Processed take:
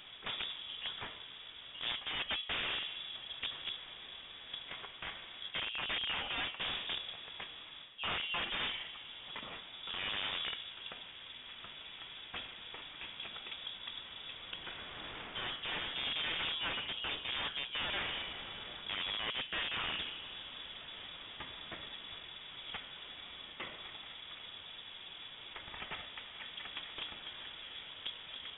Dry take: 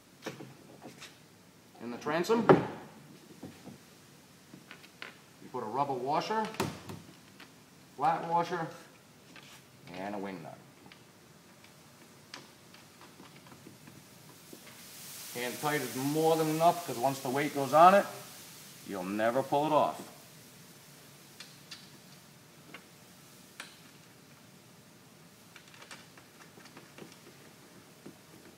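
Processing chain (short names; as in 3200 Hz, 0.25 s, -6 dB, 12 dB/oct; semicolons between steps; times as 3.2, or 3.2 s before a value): reverse; compressor 12:1, threshold -39 dBFS, peak gain reduction 25 dB; reverse; spring tank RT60 3.2 s, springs 38 ms, chirp 50 ms, DRR 15.5 dB; wrapped overs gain 38 dB; inverted band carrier 3600 Hz; gain +7.5 dB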